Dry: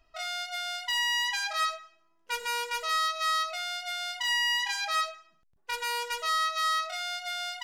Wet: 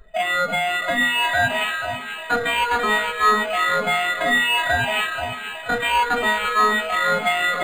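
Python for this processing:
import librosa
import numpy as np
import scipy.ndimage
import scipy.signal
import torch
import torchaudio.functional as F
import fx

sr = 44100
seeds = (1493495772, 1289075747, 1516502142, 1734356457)

y = fx.spec_ripple(x, sr, per_octave=0.57, drift_hz=2.1, depth_db=24)
y = fx.rider(y, sr, range_db=3, speed_s=0.5)
y = fx.echo_split(y, sr, split_hz=2900.0, low_ms=337, high_ms=483, feedback_pct=52, wet_db=-7.5)
y = np.interp(np.arange(len(y)), np.arange(len(y))[::8], y[::8])
y = y * librosa.db_to_amplitude(6.5)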